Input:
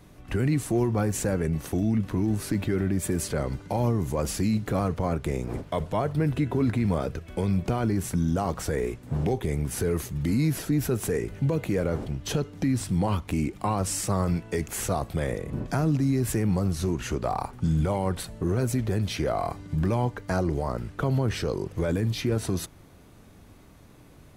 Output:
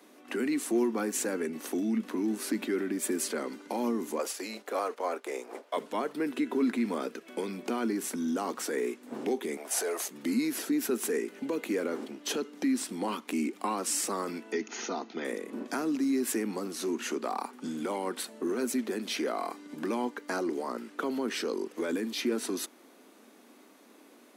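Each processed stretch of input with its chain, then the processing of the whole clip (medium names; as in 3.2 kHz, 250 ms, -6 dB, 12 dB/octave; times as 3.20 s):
4.18–5.77 s: gate -32 dBFS, range -7 dB + resonant high-pass 570 Hz, resonance Q 1.7
9.57–10.08 s: resonant high-pass 660 Hz, resonance Q 6.8 + dynamic bell 6.7 kHz, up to +6 dB, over -49 dBFS, Q 0.87
14.52–15.25 s: brick-wall FIR low-pass 6.9 kHz + comb of notches 560 Hz
whole clip: Chebyshev high-pass 230 Hz, order 5; dynamic bell 630 Hz, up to -7 dB, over -44 dBFS, Q 1.8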